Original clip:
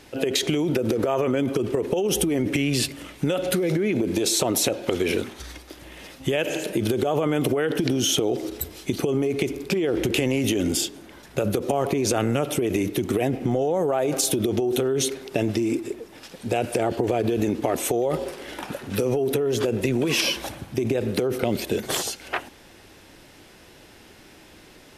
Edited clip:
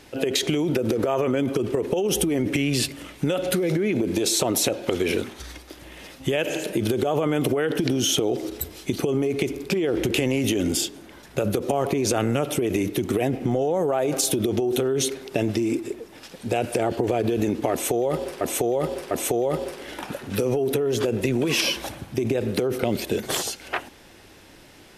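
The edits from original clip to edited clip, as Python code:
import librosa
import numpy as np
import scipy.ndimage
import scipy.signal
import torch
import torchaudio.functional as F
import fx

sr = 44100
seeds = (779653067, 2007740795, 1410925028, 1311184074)

y = fx.edit(x, sr, fx.repeat(start_s=17.71, length_s=0.7, count=3), tone=tone)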